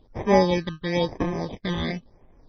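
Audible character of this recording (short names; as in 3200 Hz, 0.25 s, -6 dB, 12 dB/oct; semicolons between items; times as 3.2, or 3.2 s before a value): aliases and images of a low sample rate 1400 Hz, jitter 0%; phasing stages 8, 0.99 Hz, lowest notch 660–4400 Hz; MP3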